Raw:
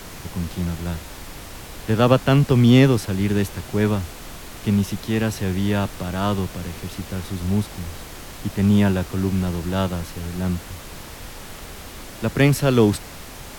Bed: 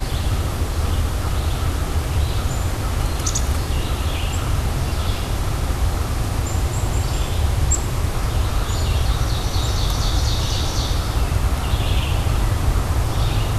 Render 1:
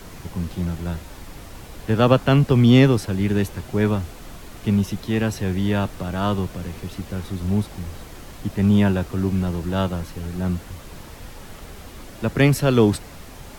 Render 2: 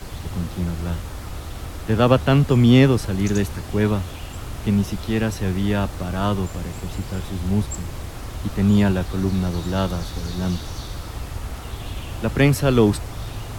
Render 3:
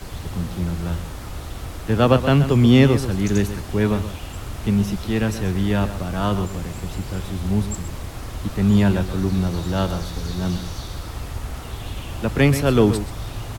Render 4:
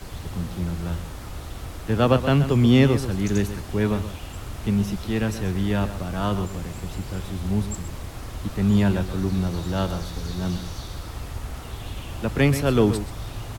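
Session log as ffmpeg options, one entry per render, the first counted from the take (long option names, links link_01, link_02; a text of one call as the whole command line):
ffmpeg -i in.wav -af "afftdn=noise_reduction=6:noise_floor=-38" out.wav
ffmpeg -i in.wav -i bed.wav -filter_complex "[1:a]volume=-12dB[link_01];[0:a][link_01]amix=inputs=2:normalize=0" out.wav
ffmpeg -i in.wav -filter_complex "[0:a]asplit=2[link_01][link_02];[link_02]adelay=128.3,volume=-11dB,highshelf=frequency=4000:gain=-2.89[link_03];[link_01][link_03]amix=inputs=2:normalize=0" out.wav
ffmpeg -i in.wav -af "volume=-3dB" out.wav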